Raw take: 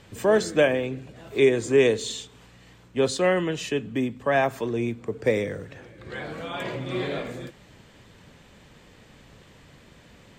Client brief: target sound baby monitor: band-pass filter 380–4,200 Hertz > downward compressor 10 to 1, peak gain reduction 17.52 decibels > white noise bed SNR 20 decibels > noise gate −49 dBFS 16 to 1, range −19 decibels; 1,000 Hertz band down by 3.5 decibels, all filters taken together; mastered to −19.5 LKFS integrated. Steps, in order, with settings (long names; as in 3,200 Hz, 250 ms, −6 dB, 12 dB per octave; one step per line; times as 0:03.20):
band-pass filter 380–4,200 Hz
parametric band 1,000 Hz −5 dB
downward compressor 10 to 1, threshold −34 dBFS
white noise bed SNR 20 dB
noise gate −49 dBFS 16 to 1, range −19 dB
level +20 dB